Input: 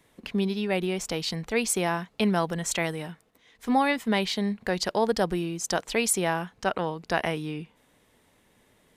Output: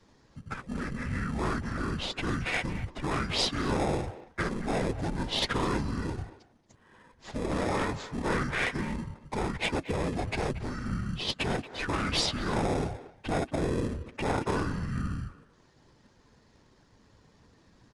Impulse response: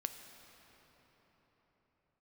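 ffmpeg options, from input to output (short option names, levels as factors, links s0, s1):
-filter_complex "[0:a]afftfilt=real='hypot(re,im)*cos(2*PI*random(0))':imag='hypot(re,im)*sin(2*PI*random(1))':win_size=512:overlap=0.75,acrossover=split=170[s0][s1];[s1]volume=26.6,asoftclip=hard,volume=0.0376[s2];[s0][s2]amix=inputs=2:normalize=0,afftfilt=real='re*lt(hypot(re,im),0.0891)':imag='im*lt(hypot(re,im),0.0891)':win_size=1024:overlap=0.75,asplit=2[s3][s4];[s4]acrusher=samples=15:mix=1:aa=0.000001,volume=0.596[s5];[s3][s5]amix=inputs=2:normalize=0,asetrate=22050,aresample=44100,asplit=2[s6][s7];[s7]adelay=230,highpass=300,lowpass=3400,asoftclip=type=hard:threshold=0.0299,volume=0.2[s8];[s6][s8]amix=inputs=2:normalize=0,volume=1.88"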